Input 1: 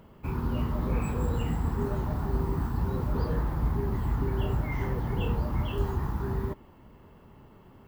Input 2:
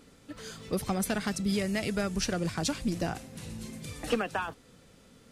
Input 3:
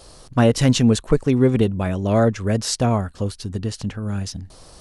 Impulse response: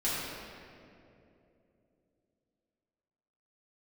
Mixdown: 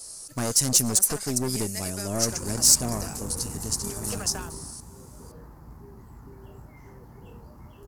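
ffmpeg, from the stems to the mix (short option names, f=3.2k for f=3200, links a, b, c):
-filter_complex "[0:a]aemphasis=mode=reproduction:type=75fm,adelay=2050,volume=-4dB,afade=t=out:st=4.32:d=0.47:silence=0.354813[a];[1:a]highpass=360,volume=-5dB[b];[2:a]bandreject=f=520:w=12,aeval=exprs='0.376*(abs(mod(val(0)/0.376+3,4)-2)-1)':c=same,volume=-7.5dB[c];[a][b][c]amix=inputs=3:normalize=0,lowshelf=f=94:g=-7,aeval=exprs='(tanh(12.6*val(0)+0.55)-tanh(0.55))/12.6':c=same,aexciter=amount=7.2:drive=8:freq=5k"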